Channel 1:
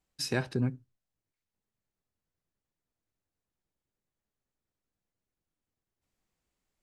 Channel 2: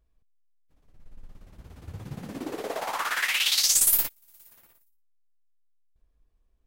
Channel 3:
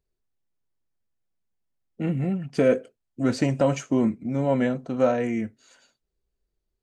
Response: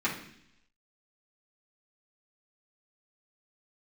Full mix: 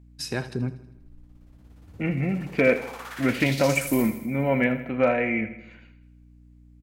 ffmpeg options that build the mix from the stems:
-filter_complex "[0:a]aeval=exprs='val(0)+0.00282*(sin(2*PI*60*n/s)+sin(2*PI*2*60*n/s)/2+sin(2*PI*3*60*n/s)/3+sin(2*PI*4*60*n/s)/4+sin(2*PI*5*60*n/s)/5)':c=same,volume=1dB,asplit=2[a][b];[b]volume=-16dB[c];[1:a]acompressor=threshold=-29dB:ratio=2,volume=-9dB,asplit=2[d][e];[e]volume=-7.5dB[f];[2:a]lowpass=f=2.3k:t=q:w=5.7,volume=9dB,asoftclip=hard,volume=-9dB,volume=-1dB,asplit=2[g][h];[h]volume=-13dB[i];[c][f][i]amix=inputs=3:normalize=0,aecho=0:1:80|160|240|320|400|480|560|640:1|0.55|0.303|0.166|0.0915|0.0503|0.0277|0.0152[j];[a][d][g][j]amix=inputs=4:normalize=0"

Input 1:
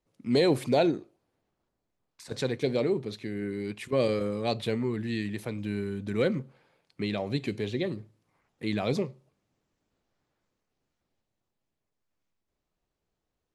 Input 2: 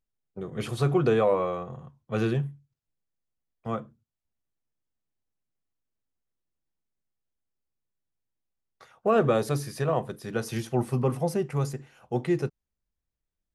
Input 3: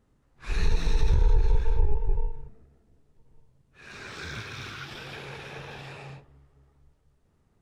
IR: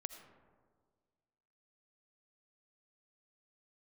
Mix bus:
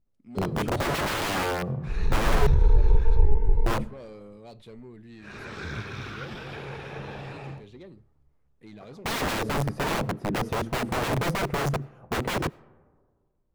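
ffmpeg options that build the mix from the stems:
-filter_complex "[0:a]highshelf=f=2.9k:g=8.5,asoftclip=type=tanh:threshold=-24dB,volume=-13.5dB[a];[1:a]tiltshelf=f=770:g=8.5,aeval=exprs='(mod(13.3*val(0)+1,2)-1)/13.3':c=same,volume=2dB,asplit=2[b][c];[c]volume=-12dB[d];[2:a]agate=range=-9dB:threshold=-49dB:ratio=16:detection=peak,dynaudnorm=f=330:g=7:m=6.5dB,adelay=1400,volume=-2dB[e];[3:a]atrim=start_sample=2205[f];[d][f]afir=irnorm=-1:irlink=0[g];[a][b][e][g]amix=inputs=4:normalize=0,highshelf=f=2.3k:g=-10.5"

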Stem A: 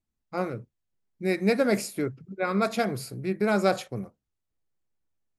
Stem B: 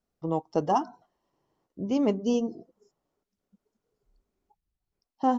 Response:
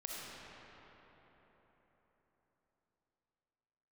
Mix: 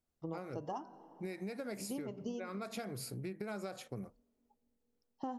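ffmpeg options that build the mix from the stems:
-filter_complex "[0:a]highshelf=f=7.7k:g=4,acompressor=threshold=-29dB:ratio=6,volume=-5dB,asplit=2[a][b];[1:a]bandreject=f=195.8:t=h:w=4,bandreject=f=391.6:t=h:w=4,bandreject=f=587.4:t=h:w=4,bandreject=f=783.2:t=h:w=4,bandreject=f=979:t=h:w=4,bandreject=f=1.1748k:t=h:w=4,bandreject=f=1.3706k:t=h:w=4,bandreject=f=1.5664k:t=h:w=4,bandreject=f=1.7622k:t=h:w=4,bandreject=f=1.958k:t=h:w=4,bandreject=f=2.1538k:t=h:w=4,bandreject=f=2.3496k:t=h:w=4,bandreject=f=2.5454k:t=h:w=4,bandreject=f=2.7412k:t=h:w=4,volume=-7.5dB,asplit=2[c][d];[d]volume=-21.5dB[e];[b]apad=whole_len=237394[f];[c][f]sidechaincompress=threshold=-41dB:ratio=8:attack=16:release=261[g];[2:a]atrim=start_sample=2205[h];[e][h]afir=irnorm=-1:irlink=0[i];[a][g][i]amix=inputs=3:normalize=0,acompressor=threshold=-38dB:ratio=6"

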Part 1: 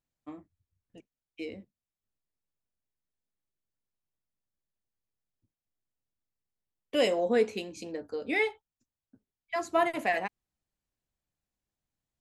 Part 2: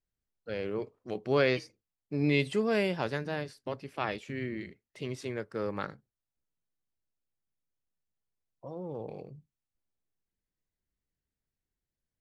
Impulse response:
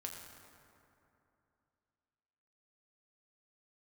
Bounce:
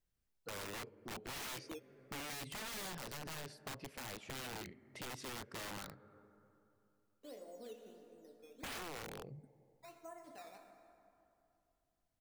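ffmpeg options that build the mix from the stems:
-filter_complex "[0:a]lowpass=1.4k,lowshelf=f=72:g=-11.5,acrusher=samples=10:mix=1:aa=0.000001:lfo=1:lforange=10:lforate=1.5,adelay=300,volume=-1.5dB,asplit=2[a][b];[b]volume=-21dB[c];[1:a]lowshelf=f=78:g=2.5,alimiter=limit=-20.5dB:level=0:latency=1:release=346,volume=1dB,asplit=3[d][e][f];[e]volume=-17.5dB[g];[f]apad=whole_len=551599[h];[a][h]sidechaingate=range=-32dB:threshold=-57dB:ratio=16:detection=peak[i];[2:a]atrim=start_sample=2205[j];[c][g]amix=inputs=2:normalize=0[k];[k][j]afir=irnorm=-1:irlink=0[l];[i][d][l]amix=inputs=3:normalize=0,aeval=exprs='(mod(39.8*val(0)+1,2)-1)/39.8':c=same,acompressor=threshold=-50dB:ratio=2"

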